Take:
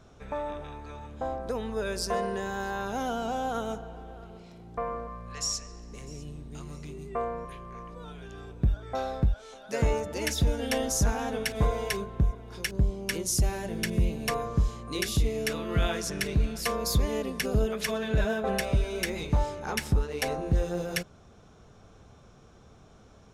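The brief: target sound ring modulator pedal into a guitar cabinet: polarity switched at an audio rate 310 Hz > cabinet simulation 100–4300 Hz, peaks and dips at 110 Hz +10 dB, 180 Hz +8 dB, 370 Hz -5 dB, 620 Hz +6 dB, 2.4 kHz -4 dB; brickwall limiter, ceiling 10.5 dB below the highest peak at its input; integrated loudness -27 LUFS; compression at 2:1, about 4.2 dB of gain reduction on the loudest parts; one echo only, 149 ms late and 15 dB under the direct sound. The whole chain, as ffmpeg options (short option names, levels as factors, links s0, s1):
-af "acompressor=threshold=0.0447:ratio=2,alimiter=level_in=1.5:limit=0.0631:level=0:latency=1,volume=0.668,aecho=1:1:149:0.178,aeval=exprs='val(0)*sgn(sin(2*PI*310*n/s))':c=same,highpass=100,equalizer=f=110:t=q:w=4:g=10,equalizer=f=180:t=q:w=4:g=8,equalizer=f=370:t=q:w=4:g=-5,equalizer=f=620:t=q:w=4:g=6,equalizer=f=2400:t=q:w=4:g=-4,lowpass=f=4300:w=0.5412,lowpass=f=4300:w=1.3066,volume=2.82"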